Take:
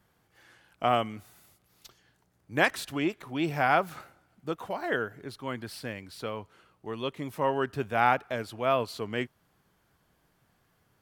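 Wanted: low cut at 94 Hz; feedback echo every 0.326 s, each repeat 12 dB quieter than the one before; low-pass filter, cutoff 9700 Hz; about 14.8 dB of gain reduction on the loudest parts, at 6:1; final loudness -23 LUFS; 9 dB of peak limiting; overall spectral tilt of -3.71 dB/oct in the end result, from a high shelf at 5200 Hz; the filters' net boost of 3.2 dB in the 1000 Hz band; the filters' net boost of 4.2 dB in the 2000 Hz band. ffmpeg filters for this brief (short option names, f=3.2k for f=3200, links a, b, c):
-af "highpass=94,lowpass=9.7k,equalizer=f=1k:t=o:g=3.5,equalizer=f=2k:t=o:g=5,highshelf=f=5.2k:g=-6,acompressor=threshold=-31dB:ratio=6,alimiter=level_in=0.5dB:limit=-24dB:level=0:latency=1,volume=-0.5dB,aecho=1:1:326|652|978:0.251|0.0628|0.0157,volume=16dB"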